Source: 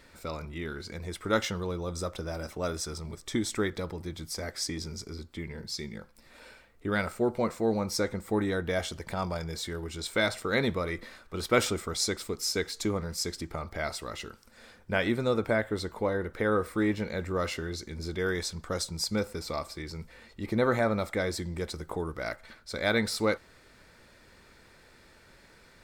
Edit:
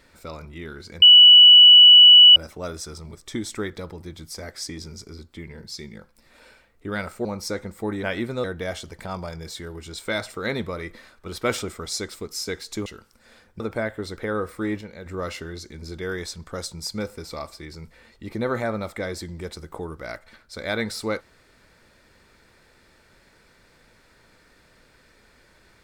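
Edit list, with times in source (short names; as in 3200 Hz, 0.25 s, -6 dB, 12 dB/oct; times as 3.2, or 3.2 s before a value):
1.02–2.36 bleep 2950 Hz -6 dBFS
7.25–7.74 cut
12.94–14.18 cut
14.92–15.33 move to 8.52
15.9–16.34 cut
16.98–17.23 gain -6.5 dB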